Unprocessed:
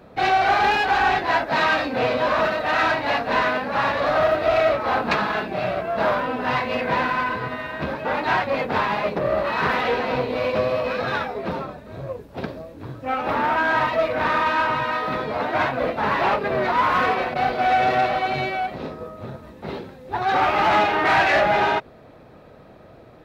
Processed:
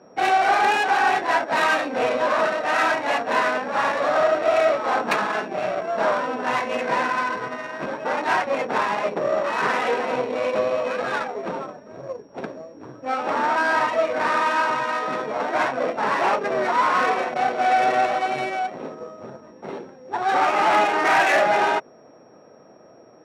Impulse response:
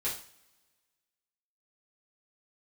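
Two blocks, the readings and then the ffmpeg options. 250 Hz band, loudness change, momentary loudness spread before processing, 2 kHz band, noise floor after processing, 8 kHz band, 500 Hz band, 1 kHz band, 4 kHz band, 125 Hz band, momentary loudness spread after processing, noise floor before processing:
−2.5 dB, −0.5 dB, 15 LU, −0.5 dB, −49 dBFS, can't be measured, 0.0 dB, 0.0 dB, −2.0 dB, −10.5 dB, 16 LU, −46 dBFS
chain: -af "aeval=exprs='val(0)+0.00794*sin(2*PI*5600*n/s)':channel_layout=same,adynamicsmooth=sensitivity=2:basefreq=1600,highpass=250"

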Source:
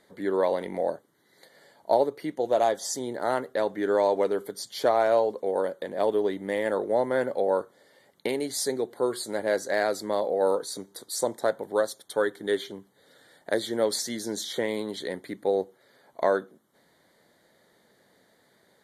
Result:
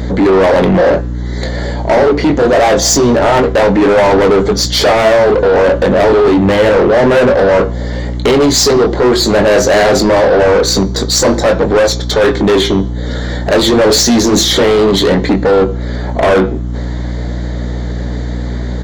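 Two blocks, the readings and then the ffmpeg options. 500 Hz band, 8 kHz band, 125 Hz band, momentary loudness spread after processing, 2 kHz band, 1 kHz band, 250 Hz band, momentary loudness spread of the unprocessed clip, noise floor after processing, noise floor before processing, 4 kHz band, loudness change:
+17.0 dB, +20.0 dB, +30.5 dB, 12 LU, +19.0 dB, +16.0 dB, +22.0 dB, 8 LU, −18 dBFS, −64 dBFS, +22.5 dB, +17.0 dB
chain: -filter_complex "[0:a]lowshelf=frequency=480:gain=10.5,flanger=delay=3.8:depth=5:regen=-77:speed=0.26:shape=sinusoidal,asplit=2[link_01][link_02];[link_02]adelay=21,volume=-8dB[link_03];[link_01][link_03]amix=inputs=2:normalize=0,aresample=16000,aresample=44100,apsyclip=28dB,asplit=2[link_04][link_05];[link_05]acompressor=threshold=-21dB:ratio=4,volume=0.5dB[link_06];[link_04][link_06]amix=inputs=2:normalize=0,aeval=exprs='val(0)+0.141*(sin(2*PI*60*n/s)+sin(2*PI*2*60*n/s)/2+sin(2*PI*3*60*n/s)/3+sin(2*PI*4*60*n/s)/4+sin(2*PI*5*60*n/s)/5)':channel_layout=same,acontrast=66,bandreject=frequency=169:width_type=h:width=4,bandreject=frequency=338:width_type=h:width=4,bandreject=frequency=507:width_type=h:width=4,bandreject=frequency=676:width_type=h:width=4,bandreject=frequency=845:width_type=h:width=4,bandreject=frequency=1014:width_type=h:width=4,bandreject=frequency=1183:width_type=h:width=4,bandreject=frequency=1352:width_type=h:width=4,bandreject=frequency=1521:width_type=h:width=4,bandreject=frequency=1690:width_type=h:width=4,bandreject=frequency=1859:width_type=h:width=4,bandreject=frequency=2028:width_type=h:width=4,bandreject=frequency=2197:width_type=h:width=4,bandreject=frequency=2366:width_type=h:width=4,bandreject=frequency=2535:width_type=h:width=4,bandreject=frequency=2704:width_type=h:width=4,bandreject=frequency=2873:width_type=h:width=4,bandreject=frequency=3042:width_type=h:width=4,bandreject=frequency=3211:width_type=h:width=4,bandreject=frequency=3380:width_type=h:width=4,bandreject=frequency=3549:width_type=h:width=4,bandreject=frequency=3718:width_type=h:width=4,bandreject=frequency=3887:width_type=h:width=4,bandreject=frequency=4056:width_type=h:width=4,bandreject=frequency=4225:width_type=h:width=4,bandreject=frequency=4394:width_type=h:width=4,bandreject=frequency=4563:width_type=h:width=4,bandreject=frequency=4732:width_type=h:width=4,bandreject=frequency=4901:width_type=h:width=4,bandreject=frequency=5070:width_type=h:width=4,bandreject=frequency=5239:width_type=h:width=4,bandreject=frequency=5408:width_type=h:width=4,bandreject=frequency=5577:width_type=h:width=4,bandreject=frequency=5746:width_type=h:width=4,bandreject=frequency=5915:width_type=h:width=4,bandreject=frequency=6084:width_type=h:width=4,volume=-5.5dB"

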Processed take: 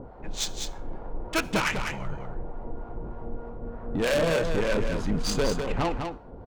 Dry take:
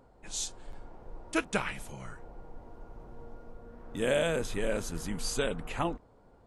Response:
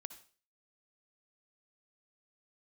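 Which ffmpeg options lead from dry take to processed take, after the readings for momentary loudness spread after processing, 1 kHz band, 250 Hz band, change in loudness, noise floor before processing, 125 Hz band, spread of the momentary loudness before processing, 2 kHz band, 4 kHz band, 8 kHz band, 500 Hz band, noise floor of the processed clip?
15 LU, +6.5 dB, +6.5 dB, +4.5 dB, −60 dBFS, +8.0 dB, 22 LU, +5.5 dB, +6.5 dB, +2.5 dB, +5.5 dB, −43 dBFS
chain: -filter_complex "[0:a]asplit=2[link_01][link_02];[link_02]acompressor=mode=upward:threshold=-37dB:ratio=2.5,volume=-3dB[link_03];[link_01][link_03]amix=inputs=2:normalize=0,acrossover=split=630[link_04][link_05];[link_04]aeval=exprs='val(0)*(1-0.7/2+0.7/2*cos(2*PI*3.3*n/s))':channel_layout=same[link_06];[link_05]aeval=exprs='val(0)*(1-0.7/2-0.7/2*cos(2*PI*3.3*n/s))':channel_layout=same[link_07];[link_06][link_07]amix=inputs=2:normalize=0,adynamicsmooth=sensitivity=3.5:basefreq=1700,asoftclip=type=tanh:threshold=-29.5dB,aecho=1:1:201:0.501,asplit=2[link_08][link_09];[1:a]atrim=start_sample=2205[link_10];[link_09][link_10]afir=irnorm=-1:irlink=0,volume=-4dB[link_11];[link_08][link_11]amix=inputs=2:normalize=0,adynamicequalizer=threshold=0.00355:dfrequency=2800:dqfactor=0.7:tfrequency=2800:tqfactor=0.7:attack=5:release=100:ratio=0.375:range=2.5:mode=boostabove:tftype=highshelf,volume=6dB"

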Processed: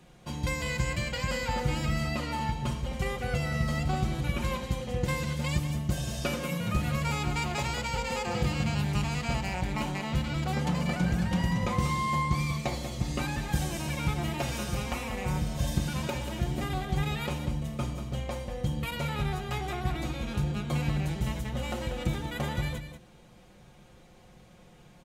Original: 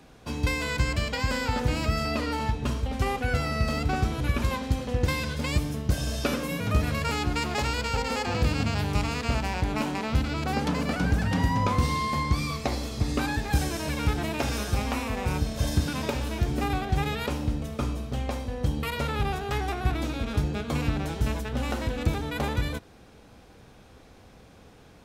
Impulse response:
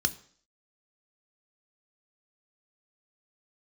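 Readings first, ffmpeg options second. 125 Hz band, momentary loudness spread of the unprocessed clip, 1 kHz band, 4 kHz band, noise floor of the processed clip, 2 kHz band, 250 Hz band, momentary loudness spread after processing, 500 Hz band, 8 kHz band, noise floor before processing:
−2.0 dB, 4 LU, −3.5 dB, −3.0 dB, −55 dBFS, −3.5 dB, −2.5 dB, 5 LU, −4.0 dB, −1.5 dB, −52 dBFS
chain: -filter_complex "[0:a]aecho=1:1:5.6:0.65,aecho=1:1:189:0.316,asplit=2[link_01][link_02];[1:a]atrim=start_sample=2205[link_03];[link_02][link_03]afir=irnorm=-1:irlink=0,volume=-19.5dB[link_04];[link_01][link_04]amix=inputs=2:normalize=0,volume=-4dB"

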